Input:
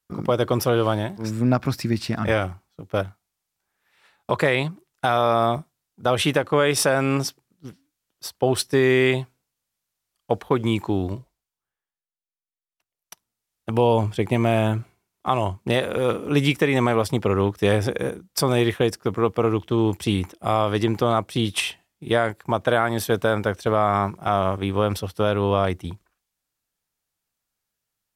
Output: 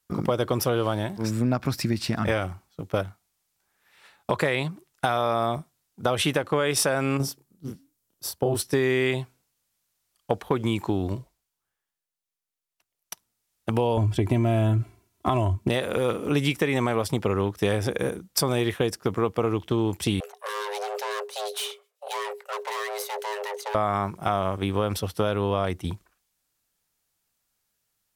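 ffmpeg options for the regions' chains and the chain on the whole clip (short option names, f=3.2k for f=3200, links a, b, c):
-filter_complex "[0:a]asettb=1/sr,asplit=3[a][b][c];[a]atrim=end=7.174[d];[b]atrim=start=7.17:end=8.62,asetpts=PTS-STARTPTS,afade=t=in:d=0.004:c=qsin,afade=t=out:st=1.446:d=0.004:c=qsin,equalizer=f=2.4k:w=0.31:g=-10,asplit=2[e][f];[f]adelay=29,volume=-2dB[g];[e][g]amix=inputs=2:normalize=0,atrim=end_sample=63945[h];[c]atrim=start=8.616[i];[d][h]acrossfade=d=0.004:c1=hsin:c2=qsin[j];[j][i]acrossfade=d=0.004:c1=qsin:c2=hsin,asettb=1/sr,asplit=3[k][l][m];[k]atrim=end=13.974[n];[l]atrim=start=13.97:end=15.69,asetpts=PTS-STARTPTS,afade=t=in:d=0.004:c=qsin,afade=t=out:st=1.716:d=0.004:c=qsin,equalizer=f=110:t=o:w=2.7:g=12.5,aecho=1:1:3:0.64,atrim=end_sample=75852,acompressor=threshold=-15dB:ratio=2.5:attack=3.2:release=140:knee=1:detection=peak[o];[m]atrim=start=15.686[p];[n][o]acrossfade=d=0.004:c1=hsin:c2=qsin[q];[q][p]acrossfade=d=0.004:c1=qsin:c2=hsin,asettb=1/sr,asplit=3[r][s][t];[r]atrim=end=20.204[u];[s]atrim=start=20.2:end=23.75,asetpts=PTS-STARTPTS,afade=t=in:d=0.004:c=qsin,afade=t=out:st=3.546:d=0.004:c=qsin,acrossover=split=1400[v][w];[v]aeval=exprs='val(0)*(1-0.7/2+0.7/2*cos(2*PI*8.1*n/s))':c=same[x];[w]aeval=exprs='val(0)*(1-0.7/2-0.7/2*cos(2*PI*8.1*n/s))':c=same[y];[x][y]amix=inputs=2:normalize=0,aeval=exprs='(tanh(44.7*val(0)+0.5)-tanh(0.5))/44.7':c=same,afreqshift=410[z];[t]atrim=start=23.746[aa];[u][z]acrossfade=d=0.004:c1=hsin:c2=qsin[ab];[ab][aa]acrossfade=d=0.004:c1=qsin:c2=hsin,equalizer=f=12k:w=0.31:g=3,acompressor=threshold=-27dB:ratio=2.5,volume=3.5dB"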